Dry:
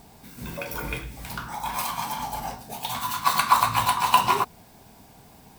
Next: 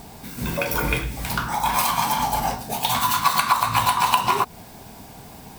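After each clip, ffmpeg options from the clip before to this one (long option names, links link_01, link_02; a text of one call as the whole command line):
ffmpeg -i in.wav -af "acompressor=threshold=-24dB:ratio=10,volume=9dB" out.wav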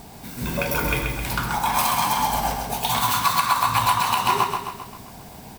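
ffmpeg -i in.wav -filter_complex "[0:a]asplit=2[link_01][link_02];[link_02]aecho=0:1:132|264|396|528|660|792|924:0.531|0.276|0.144|0.0746|0.0388|0.0202|0.0105[link_03];[link_01][link_03]amix=inputs=2:normalize=0,alimiter=level_in=5.5dB:limit=-1dB:release=50:level=0:latency=1,volume=-6.5dB" out.wav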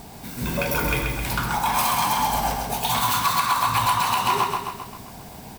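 ffmpeg -i in.wav -af "asoftclip=type=tanh:threshold=-14dB,volume=1dB" out.wav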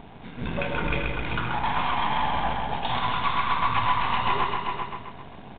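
ffmpeg -i in.wav -af "aeval=exprs='if(lt(val(0),0),0.251*val(0),val(0))':channel_layout=same,aecho=1:1:390:0.447,aresample=8000,aresample=44100" out.wav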